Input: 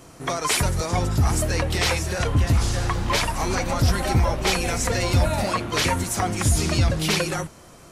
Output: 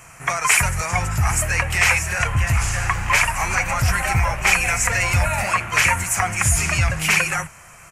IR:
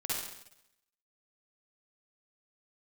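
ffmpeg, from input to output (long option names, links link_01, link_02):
-af "firequalizer=gain_entry='entry(140,0);entry(280,-14);entry(740,2);entry(1600,9);entry(2500,12);entry(3600,-8);entry(7000,8);entry(10000,5)':delay=0.05:min_phase=1"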